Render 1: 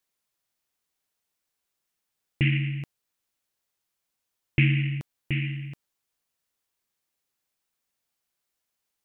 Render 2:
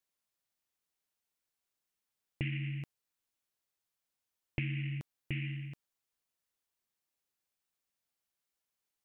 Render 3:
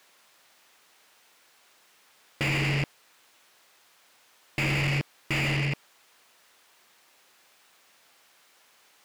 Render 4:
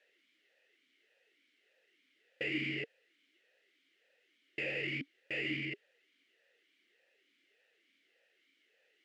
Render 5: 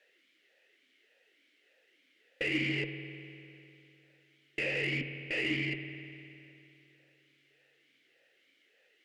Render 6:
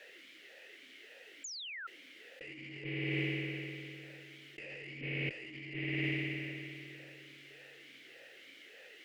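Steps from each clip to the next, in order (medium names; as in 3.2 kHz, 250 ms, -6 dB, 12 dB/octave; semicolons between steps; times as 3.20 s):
compression 6:1, threshold -26 dBFS, peak gain reduction 9.5 dB; trim -6.5 dB
overdrive pedal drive 41 dB, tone 2.5 kHz, clips at -18 dBFS
talking filter e-i 1.7 Hz; trim +2 dB
Chebyshev shaper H 6 -28 dB, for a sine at -25 dBFS; spring tank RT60 2.8 s, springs 50 ms, chirp 40 ms, DRR 8 dB; trim +4 dB
painted sound fall, 1.44–1.87 s, 1.3–7.3 kHz -36 dBFS; compressor with a negative ratio -47 dBFS, ratio -1; trim +5.5 dB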